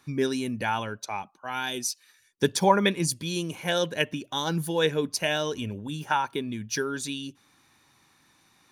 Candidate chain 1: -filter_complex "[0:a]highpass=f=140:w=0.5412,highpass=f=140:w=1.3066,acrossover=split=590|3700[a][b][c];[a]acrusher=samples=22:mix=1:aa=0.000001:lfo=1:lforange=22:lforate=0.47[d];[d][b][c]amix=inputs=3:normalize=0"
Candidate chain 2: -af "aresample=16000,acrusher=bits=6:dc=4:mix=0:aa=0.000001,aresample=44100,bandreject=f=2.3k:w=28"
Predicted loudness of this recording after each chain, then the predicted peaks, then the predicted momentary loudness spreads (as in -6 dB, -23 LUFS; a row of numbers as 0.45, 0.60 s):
-28.5, -28.0 LUFS; -5.0, -6.0 dBFS; 11, 11 LU